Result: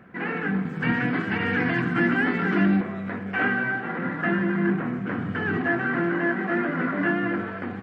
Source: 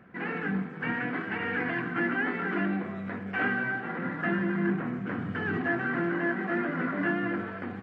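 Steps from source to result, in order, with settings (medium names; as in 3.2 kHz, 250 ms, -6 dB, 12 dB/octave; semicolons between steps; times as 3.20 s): 0.65–2.81 s: tone controls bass +8 dB, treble +13 dB; trim +4.5 dB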